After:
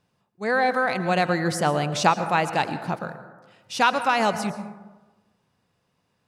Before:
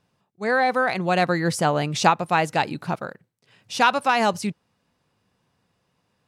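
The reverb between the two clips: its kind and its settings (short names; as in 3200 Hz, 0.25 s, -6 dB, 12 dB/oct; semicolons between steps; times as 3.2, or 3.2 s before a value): plate-style reverb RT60 1.2 s, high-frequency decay 0.35×, pre-delay 0.1 s, DRR 11 dB; gain -1.5 dB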